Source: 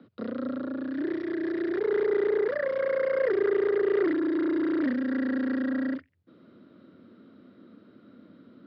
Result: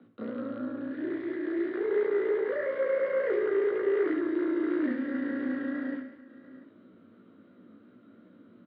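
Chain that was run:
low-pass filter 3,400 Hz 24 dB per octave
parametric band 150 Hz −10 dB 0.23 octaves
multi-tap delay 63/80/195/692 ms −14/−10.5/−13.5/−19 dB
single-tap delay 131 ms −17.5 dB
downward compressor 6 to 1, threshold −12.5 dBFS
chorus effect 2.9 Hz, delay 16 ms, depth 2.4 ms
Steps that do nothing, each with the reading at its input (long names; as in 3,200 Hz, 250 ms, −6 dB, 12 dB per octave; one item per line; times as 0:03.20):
downward compressor, threshold −12.5 dBFS: peak of its input −14.5 dBFS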